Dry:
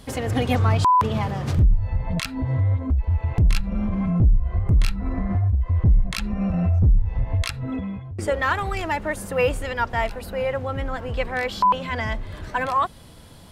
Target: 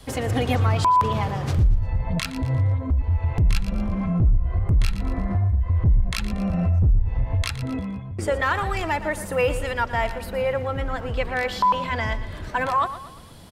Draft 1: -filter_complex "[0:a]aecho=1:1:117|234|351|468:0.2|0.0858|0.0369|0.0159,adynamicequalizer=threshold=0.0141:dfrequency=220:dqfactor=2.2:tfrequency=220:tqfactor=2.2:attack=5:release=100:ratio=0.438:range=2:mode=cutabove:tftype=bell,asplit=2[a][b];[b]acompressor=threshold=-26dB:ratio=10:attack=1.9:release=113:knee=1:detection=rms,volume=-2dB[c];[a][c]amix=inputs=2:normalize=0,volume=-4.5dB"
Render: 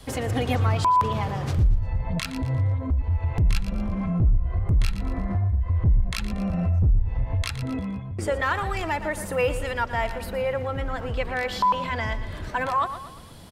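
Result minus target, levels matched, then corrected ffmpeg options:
compressor: peak gain reduction +7.5 dB
-filter_complex "[0:a]aecho=1:1:117|234|351|468:0.2|0.0858|0.0369|0.0159,adynamicequalizer=threshold=0.0141:dfrequency=220:dqfactor=2.2:tfrequency=220:tqfactor=2.2:attack=5:release=100:ratio=0.438:range=2:mode=cutabove:tftype=bell,asplit=2[a][b];[b]acompressor=threshold=-17.5dB:ratio=10:attack=1.9:release=113:knee=1:detection=rms,volume=-2dB[c];[a][c]amix=inputs=2:normalize=0,volume=-4.5dB"

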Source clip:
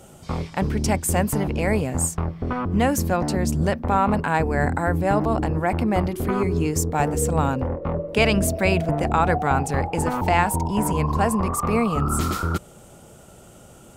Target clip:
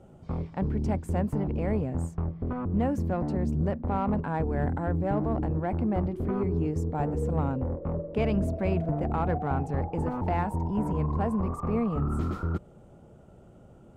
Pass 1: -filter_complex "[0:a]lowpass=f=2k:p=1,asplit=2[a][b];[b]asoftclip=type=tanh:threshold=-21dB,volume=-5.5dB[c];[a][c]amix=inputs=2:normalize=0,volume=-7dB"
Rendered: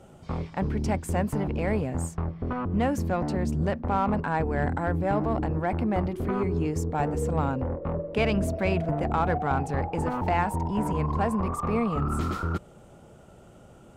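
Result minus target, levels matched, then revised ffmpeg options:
2000 Hz band +6.5 dB
-filter_complex "[0:a]lowpass=f=510:p=1,asplit=2[a][b];[b]asoftclip=type=tanh:threshold=-21dB,volume=-5.5dB[c];[a][c]amix=inputs=2:normalize=0,volume=-7dB"

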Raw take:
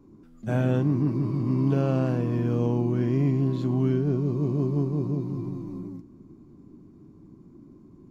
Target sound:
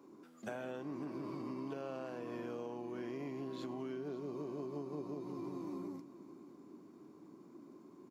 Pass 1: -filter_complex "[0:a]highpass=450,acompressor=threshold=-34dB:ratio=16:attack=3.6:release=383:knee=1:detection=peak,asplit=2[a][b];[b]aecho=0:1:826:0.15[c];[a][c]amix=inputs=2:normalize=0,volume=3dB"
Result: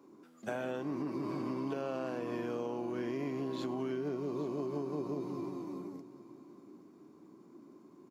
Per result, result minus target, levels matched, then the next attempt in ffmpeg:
echo 0.272 s late; compressor: peak gain reduction -6 dB
-filter_complex "[0:a]highpass=450,acompressor=threshold=-34dB:ratio=16:attack=3.6:release=383:knee=1:detection=peak,asplit=2[a][b];[b]aecho=0:1:554:0.15[c];[a][c]amix=inputs=2:normalize=0,volume=3dB"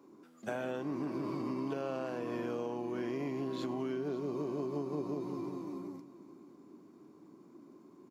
compressor: peak gain reduction -6 dB
-filter_complex "[0:a]highpass=450,acompressor=threshold=-40.5dB:ratio=16:attack=3.6:release=383:knee=1:detection=peak,asplit=2[a][b];[b]aecho=0:1:554:0.15[c];[a][c]amix=inputs=2:normalize=0,volume=3dB"

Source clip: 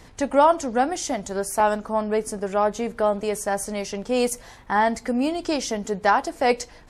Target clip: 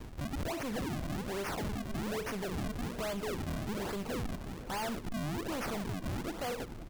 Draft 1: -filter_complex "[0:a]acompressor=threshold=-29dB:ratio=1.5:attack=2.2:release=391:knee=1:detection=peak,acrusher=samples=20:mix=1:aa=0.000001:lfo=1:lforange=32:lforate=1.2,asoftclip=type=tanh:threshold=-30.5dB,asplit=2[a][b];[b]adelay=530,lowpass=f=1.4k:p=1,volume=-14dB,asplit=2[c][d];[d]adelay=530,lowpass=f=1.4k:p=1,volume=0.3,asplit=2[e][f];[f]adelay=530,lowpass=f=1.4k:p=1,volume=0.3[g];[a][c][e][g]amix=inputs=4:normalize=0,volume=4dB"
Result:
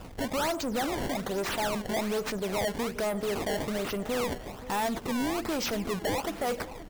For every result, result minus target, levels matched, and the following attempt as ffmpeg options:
decimation with a swept rate: distortion -10 dB; soft clip: distortion -4 dB
-filter_complex "[0:a]acompressor=threshold=-29dB:ratio=1.5:attack=2.2:release=391:knee=1:detection=peak,acrusher=samples=57:mix=1:aa=0.000001:lfo=1:lforange=91.2:lforate=1.2,asoftclip=type=tanh:threshold=-30.5dB,asplit=2[a][b];[b]adelay=530,lowpass=f=1.4k:p=1,volume=-14dB,asplit=2[c][d];[d]adelay=530,lowpass=f=1.4k:p=1,volume=0.3,asplit=2[e][f];[f]adelay=530,lowpass=f=1.4k:p=1,volume=0.3[g];[a][c][e][g]amix=inputs=4:normalize=0,volume=4dB"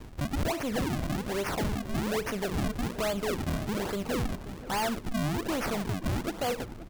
soft clip: distortion -4 dB
-filter_complex "[0:a]acompressor=threshold=-29dB:ratio=1.5:attack=2.2:release=391:knee=1:detection=peak,acrusher=samples=57:mix=1:aa=0.000001:lfo=1:lforange=91.2:lforate=1.2,asoftclip=type=tanh:threshold=-38.5dB,asplit=2[a][b];[b]adelay=530,lowpass=f=1.4k:p=1,volume=-14dB,asplit=2[c][d];[d]adelay=530,lowpass=f=1.4k:p=1,volume=0.3,asplit=2[e][f];[f]adelay=530,lowpass=f=1.4k:p=1,volume=0.3[g];[a][c][e][g]amix=inputs=4:normalize=0,volume=4dB"

